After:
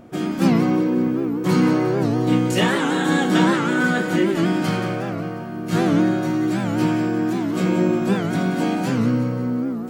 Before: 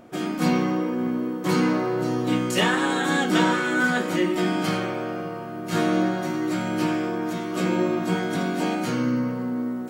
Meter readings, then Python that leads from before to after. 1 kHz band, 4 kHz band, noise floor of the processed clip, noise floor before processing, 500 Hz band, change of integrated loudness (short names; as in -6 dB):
+1.5 dB, +0.5 dB, -28 dBFS, -32 dBFS, +3.0 dB, +4.0 dB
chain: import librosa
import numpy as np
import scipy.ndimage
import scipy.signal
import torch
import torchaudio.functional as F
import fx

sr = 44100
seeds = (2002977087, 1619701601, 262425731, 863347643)

p1 = fx.low_shelf(x, sr, hz=250.0, db=9.5)
p2 = p1 + fx.echo_feedback(p1, sr, ms=180, feedback_pct=51, wet_db=-10.0, dry=0)
y = fx.record_warp(p2, sr, rpm=78.0, depth_cents=160.0)